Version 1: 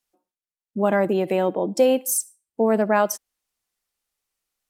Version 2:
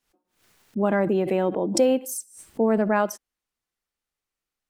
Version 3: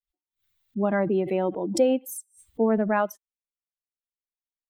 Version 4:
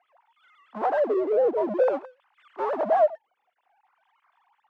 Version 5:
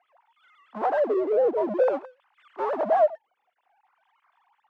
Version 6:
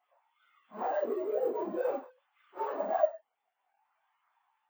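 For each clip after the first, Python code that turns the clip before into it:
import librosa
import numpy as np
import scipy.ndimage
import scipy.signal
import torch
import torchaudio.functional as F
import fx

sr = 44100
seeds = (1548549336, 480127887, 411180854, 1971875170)

y1 = fx.curve_eq(x, sr, hz=(330.0, 640.0, 1500.0, 11000.0), db=(0, -4, -2, -10))
y1 = fx.pre_swell(y1, sr, db_per_s=110.0)
y2 = fx.bin_expand(y1, sr, power=1.5)
y2 = fx.dynamic_eq(y2, sr, hz=6100.0, q=0.94, threshold_db=-49.0, ratio=4.0, max_db=-6)
y3 = fx.sine_speech(y2, sr)
y3 = fx.power_curve(y3, sr, exponent=0.5)
y3 = fx.wah_lfo(y3, sr, hz=0.53, low_hz=550.0, high_hz=1100.0, q=2.6)
y4 = y3
y5 = fx.phase_scramble(y4, sr, seeds[0], window_ms=100)
y5 = np.repeat(scipy.signal.resample_poly(y5, 1, 2), 2)[:len(y5)]
y5 = y5 * librosa.db_to_amplitude(-8.5)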